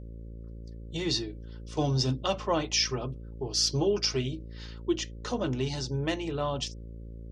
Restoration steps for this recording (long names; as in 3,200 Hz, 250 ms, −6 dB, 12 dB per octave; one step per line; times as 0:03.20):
hum removal 56.3 Hz, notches 10